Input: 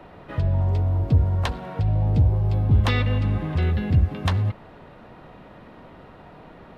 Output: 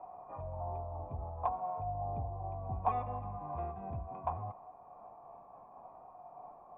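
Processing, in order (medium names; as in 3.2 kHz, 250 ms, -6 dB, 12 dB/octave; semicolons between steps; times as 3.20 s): sawtooth pitch modulation -2 st, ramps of 1458 ms; cascade formant filter a; trim +6 dB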